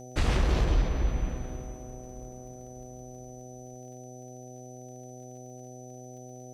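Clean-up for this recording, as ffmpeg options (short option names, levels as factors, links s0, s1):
-af "adeclick=t=4,bandreject=f=125.7:t=h:w=4,bandreject=f=251.4:t=h:w=4,bandreject=f=377.1:t=h:w=4,bandreject=f=502.8:t=h:w=4,bandreject=f=628.5:t=h:w=4,bandreject=f=754.2:t=h:w=4,bandreject=f=6000:w=30,agate=range=0.0891:threshold=0.0141"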